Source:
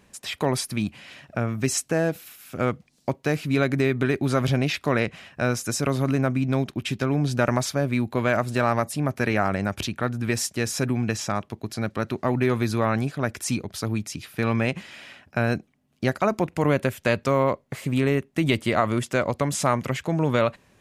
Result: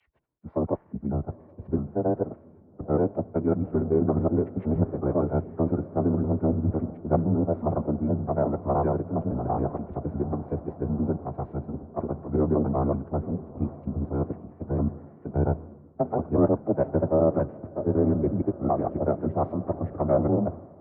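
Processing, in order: slices played last to first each 93 ms, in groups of 4; low-pass 1 kHz 24 dB/octave; in parallel at +1 dB: compression 12:1, threshold -31 dBFS, peak gain reduction 15 dB; on the sum: formant-preserving pitch shift -9.5 st; frequency shift +17 Hz; on a send: echo that smears into a reverb 891 ms, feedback 65%, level -13 dB; on the sum: three bands expanded up and down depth 100%; trim -2.5 dB

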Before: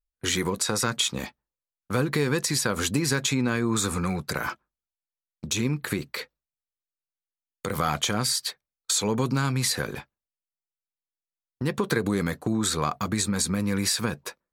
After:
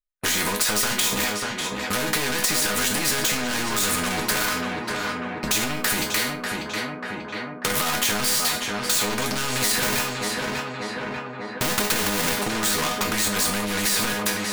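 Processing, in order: 9.82–12.39 s: square wave that keeps the level; peaking EQ 1.7 kHz +6.5 dB 1.2 oct; level rider gain up to 11.5 dB; waveshaping leveller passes 5; chord resonator G#3 minor, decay 0.24 s; tape echo 591 ms, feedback 74%, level -8 dB, low-pass 1.7 kHz; loudness maximiser +17.5 dB; spectrum-flattening compressor 2:1; trim -5.5 dB

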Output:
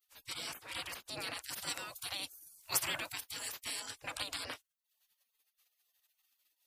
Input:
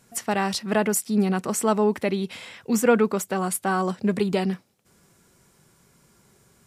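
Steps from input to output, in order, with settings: spectral gate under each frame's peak -30 dB weak; 1.42–3.80 s: treble shelf 8 kHz +11 dB; trim +3.5 dB

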